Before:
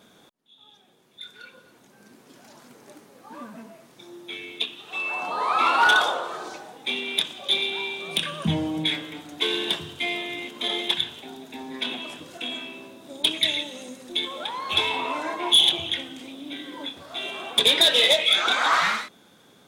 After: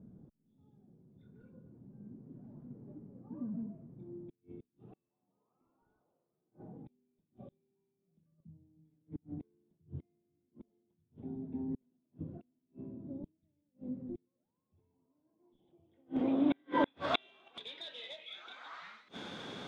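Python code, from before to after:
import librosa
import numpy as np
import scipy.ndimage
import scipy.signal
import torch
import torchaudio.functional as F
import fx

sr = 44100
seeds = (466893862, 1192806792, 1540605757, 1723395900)

y = fx.gate_flip(x, sr, shuts_db=-26.0, range_db=-39)
y = fx.filter_sweep_lowpass(y, sr, from_hz=150.0, to_hz=4100.0, start_s=15.22, end_s=17.3, q=0.88)
y = F.gain(torch.from_numpy(y), 10.0).numpy()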